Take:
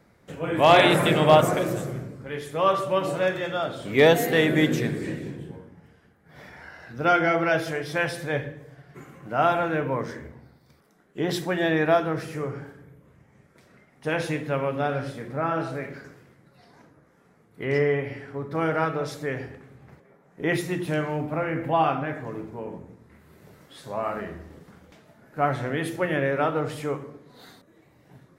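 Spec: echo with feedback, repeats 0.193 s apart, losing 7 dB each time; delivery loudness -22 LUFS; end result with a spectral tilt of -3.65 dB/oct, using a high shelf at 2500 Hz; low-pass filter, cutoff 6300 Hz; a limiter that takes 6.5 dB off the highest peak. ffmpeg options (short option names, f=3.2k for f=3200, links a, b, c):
-af "lowpass=6.3k,highshelf=f=2.5k:g=7.5,alimiter=limit=-10.5dB:level=0:latency=1,aecho=1:1:193|386|579|772|965:0.447|0.201|0.0905|0.0407|0.0183,volume=2dB"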